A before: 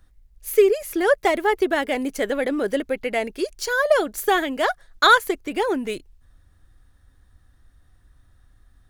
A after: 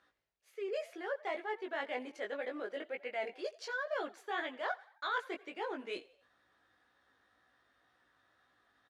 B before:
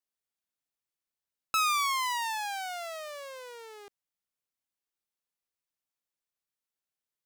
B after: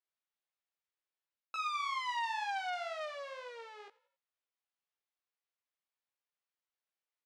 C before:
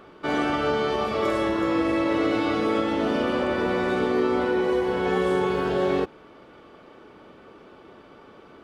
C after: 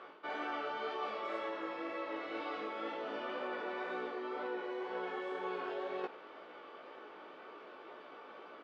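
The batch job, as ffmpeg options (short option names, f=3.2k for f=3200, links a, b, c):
-filter_complex "[0:a]areverse,acompressor=threshold=-33dB:ratio=10,areverse,flanger=delay=16:depth=3.5:speed=2,highpass=490,lowpass=3.7k,asplit=4[a][b][c][d];[b]adelay=88,afreqshift=45,volume=-21dB[e];[c]adelay=176,afreqshift=90,volume=-27.6dB[f];[d]adelay=264,afreqshift=135,volume=-34.1dB[g];[a][e][f][g]amix=inputs=4:normalize=0,volume=2.5dB"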